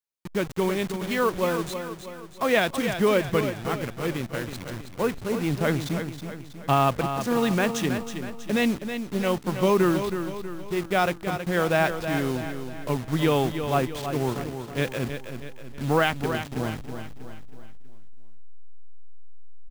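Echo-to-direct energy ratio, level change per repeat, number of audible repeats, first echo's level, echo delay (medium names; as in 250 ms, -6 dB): -7.5 dB, -6.5 dB, 5, -8.5 dB, 321 ms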